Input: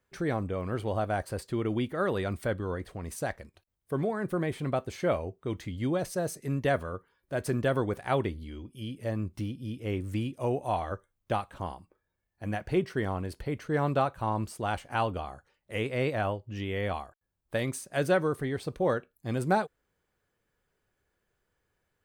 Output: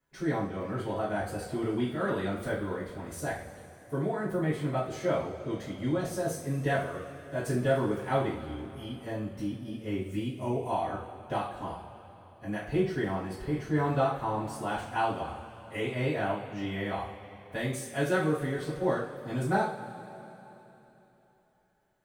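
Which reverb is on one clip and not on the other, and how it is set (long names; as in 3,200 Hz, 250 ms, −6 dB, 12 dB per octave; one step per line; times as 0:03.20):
coupled-rooms reverb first 0.42 s, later 3.5 s, from −18 dB, DRR −10 dB
level −11 dB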